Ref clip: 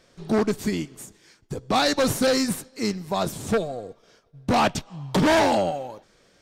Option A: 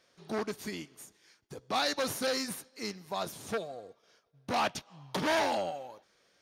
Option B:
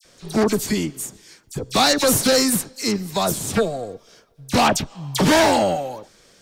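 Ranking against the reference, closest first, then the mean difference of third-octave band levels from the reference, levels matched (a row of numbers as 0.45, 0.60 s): A, B; 3.0, 6.0 dB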